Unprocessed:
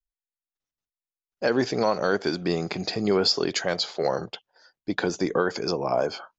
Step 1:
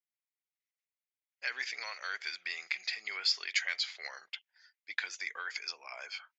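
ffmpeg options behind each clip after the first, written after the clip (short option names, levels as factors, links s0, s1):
-af "highpass=f=2100:t=q:w=4.7,volume=0.376"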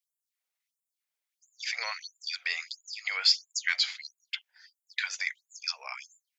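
-af "afftfilt=real='re*gte(b*sr/1024,390*pow(7000/390,0.5+0.5*sin(2*PI*1.5*pts/sr)))':imag='im*gte(b*sr/1024,390*pow(7000/390,0.5+0.5*sin(2*PI*1.5*pts/sr)))':win_size=1024:overlap=0.75,volume=2.24"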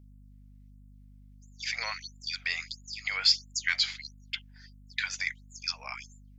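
-af "aeval=exprs='val(0)+0.00251*(sin(2*PI*50*n/s)+sin(2*PI*2*50*n/s)/2+sin(2*PI*3*50*n/s)/3+sin(2*PI*4*50*n/s)/4+sin(2*PI*5*50*n/s)/5)':c=same"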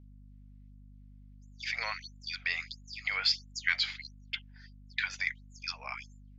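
-af "lowpass=3900"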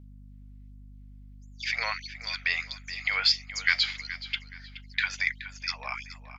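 -filter_complex "[0:a]asplit=2[s0][s1];[s1]adelay=423,lowpass=f=5000:p=1,volume=0.224,asplit=2[s2][s3];[s3]adelay=423,lowpass=f=5000:p=1,volume=0.34,asplit=2[s4][s5];[s5]adelay=423,lowpass=f=5000:p=1,volume=0.34[s6];[s0][s2][s4][s6]amix=inputs=4:normalize=0,volume=1.78"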